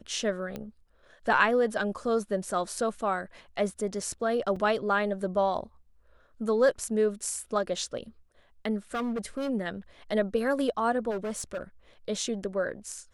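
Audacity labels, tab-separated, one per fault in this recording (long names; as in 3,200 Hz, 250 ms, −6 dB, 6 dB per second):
0.560000	0.560000	click −22 dBFS
4.560000	4.560000	drop-out 4 ms
8.940000	9.500000	clipping −27.5 dBFS
11.100000	11.620000	clipping −29 dBFS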